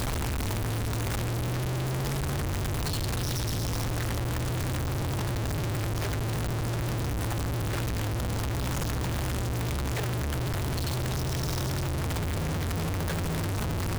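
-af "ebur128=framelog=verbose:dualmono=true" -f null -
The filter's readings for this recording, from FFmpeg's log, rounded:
Integrated loudness:
  I:         -27.3 LUFS
  Threshold: -37.3 LUFS
Loudness range:
  LRA:         0.3 LU
  Threshold: -47.2 LUFS
  LRA low:   -27.4 LUFS
  LRA high:  -27.1 LUFS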